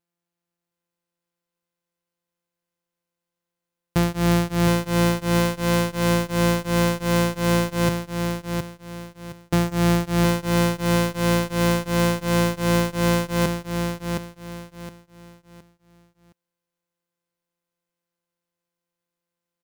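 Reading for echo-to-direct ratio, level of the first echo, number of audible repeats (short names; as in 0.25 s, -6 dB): -5.0 dB, -5.5 dB, 3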